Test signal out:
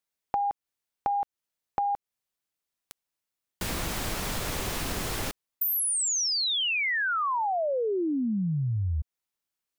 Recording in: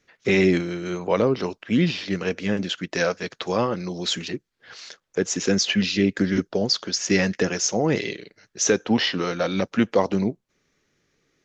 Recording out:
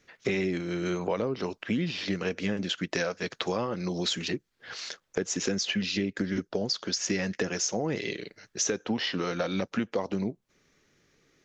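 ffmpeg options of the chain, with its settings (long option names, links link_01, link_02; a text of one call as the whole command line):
ffmpeg -i in.wav -af "acompressor=threshold=-29dB:ratio=6,volume=2.5dB" out.wav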